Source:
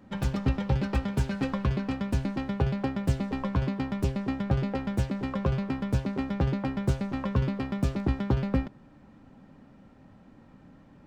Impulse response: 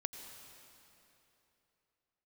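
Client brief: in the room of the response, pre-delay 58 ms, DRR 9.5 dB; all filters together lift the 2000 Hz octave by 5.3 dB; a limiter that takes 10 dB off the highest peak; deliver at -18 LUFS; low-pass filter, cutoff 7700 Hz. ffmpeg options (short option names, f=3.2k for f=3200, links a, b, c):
-filter_complex "[0:a]lowpass=7.7k,equalizer=f=2k:t=o:g=6.5,alimiter=limit=-24dB:level=0:latency=1,asplit=2[a][b];[1:a]atrim=start_sample=2205,adelay=58[c];[b][c]afir=irnorm=-1:irlink=0,volume=-8.5dB[d];[a][d]amix=inputs=2:normalize=0,volume=15.5dB"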